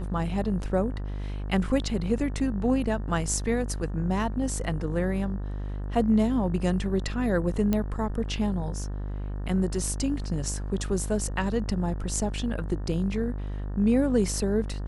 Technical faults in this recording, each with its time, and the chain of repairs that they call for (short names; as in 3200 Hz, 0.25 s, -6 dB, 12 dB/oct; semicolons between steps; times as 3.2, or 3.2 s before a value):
buzz 50 Hz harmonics 37 -32 dBFS
7.73 pop -13 dBFS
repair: de-click; de-hum 50 Hz, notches 37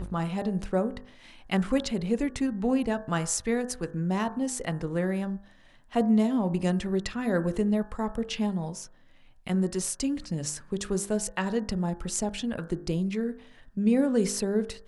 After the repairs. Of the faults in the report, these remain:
none